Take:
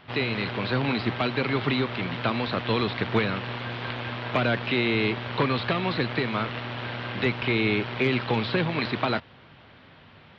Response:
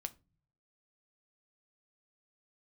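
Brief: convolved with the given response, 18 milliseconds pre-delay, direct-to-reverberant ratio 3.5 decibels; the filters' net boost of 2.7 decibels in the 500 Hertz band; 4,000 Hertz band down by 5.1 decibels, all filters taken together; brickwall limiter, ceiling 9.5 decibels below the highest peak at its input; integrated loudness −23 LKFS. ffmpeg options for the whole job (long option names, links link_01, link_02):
-filter_complex "[0:a]equalizer=frequency=500:width_type=o:gain=3.5,equalizer=frequency=4000:width_type=o:gain=-6.5,alimiter=limit=-19.5dB:level=0:latency=1,asplit=2[link_01][link_02];[1:a]atrim=start_sample=2205,adelay=18[link_03];[link_02][link_03]afir=irnorm=-1:irlink=0,volume=-1dB[link_04];[link_01][link_04]amix=inputs=2:normalize=0,volume=5dB"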